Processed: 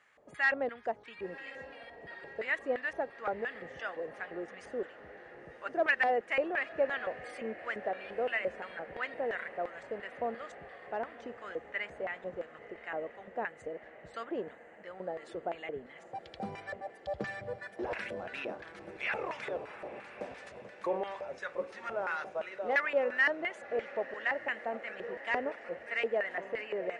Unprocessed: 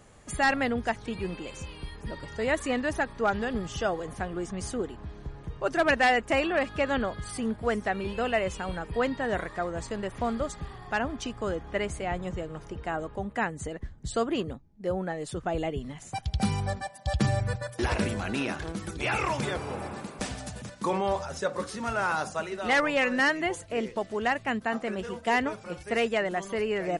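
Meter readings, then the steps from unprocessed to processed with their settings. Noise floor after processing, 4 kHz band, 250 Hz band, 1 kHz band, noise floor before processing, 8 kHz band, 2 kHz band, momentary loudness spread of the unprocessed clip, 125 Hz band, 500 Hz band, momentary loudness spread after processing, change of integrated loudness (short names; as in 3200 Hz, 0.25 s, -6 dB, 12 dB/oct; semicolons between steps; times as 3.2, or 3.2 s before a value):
-54 dBFS, -11.5 dB, -14.0 dB, -8.0 dB, -48 dBFS, under -20 dB, -4.0 dB, 12 LU, -22.0 dB, -5.5 dB, 15 LU, -6.0 dB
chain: LFO band-pass square 2.9 Hz 540–1900 Hz; diffused feedback echo 1.053 s, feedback 66%, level -16 dB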